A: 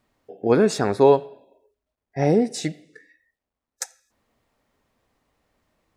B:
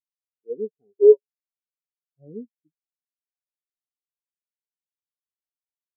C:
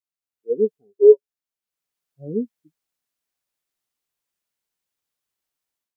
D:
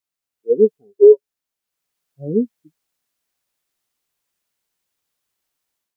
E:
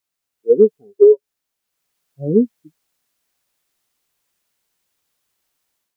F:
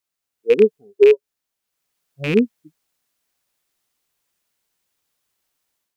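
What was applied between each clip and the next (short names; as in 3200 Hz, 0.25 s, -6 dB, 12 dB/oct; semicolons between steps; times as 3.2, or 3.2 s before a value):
spectral expander 4:1
AGC gain up to 13 dB; gain -1 dB
limiter -8 dBFS, peak gain reduction 6.5 dB; gain +6.5 dB
compressor, threshold -11 dBFS, peak gain reduction 7 dB; gain +5 dB
rattling part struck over -25 dBFS, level -12 dBFS; gain -2 dB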